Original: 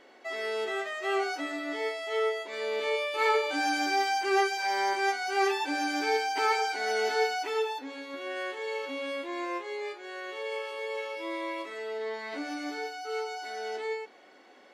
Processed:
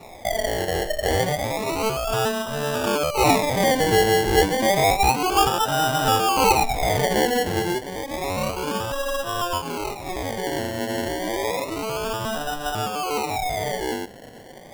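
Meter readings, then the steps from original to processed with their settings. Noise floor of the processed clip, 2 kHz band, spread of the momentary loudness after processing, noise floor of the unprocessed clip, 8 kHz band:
−42 dBFS, +4.0 dB, 9 LU, −56 dBFS, +14.5 dB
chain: low shelf with overshoot 460 Hz −12 dB, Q 1.5
in parallel at +2 dB: downward compressor, threshold −39 dBFS, peak gain reduction 17.5 dB
on the sum: sample-and-hold swept by an LFO 28×, swing 60% 0.3 Hz
level +6 dB

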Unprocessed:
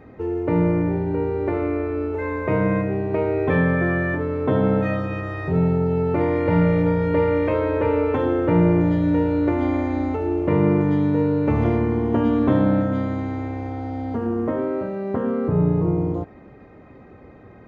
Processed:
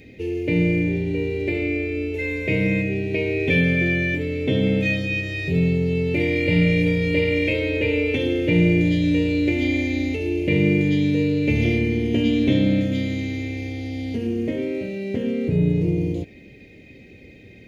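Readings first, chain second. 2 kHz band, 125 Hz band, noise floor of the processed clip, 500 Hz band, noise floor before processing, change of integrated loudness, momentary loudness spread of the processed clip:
+6.5 dB, 0.0 dB, −46 dBFS, −2.5 dB, −46 dBFS, 0.0 dB, 8 LU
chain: drawn EQ curve 290 Hz 0 dB, 520 Hz −3 dB, 1,200 Hz −27 dB, 2,300 Hz +15 dB

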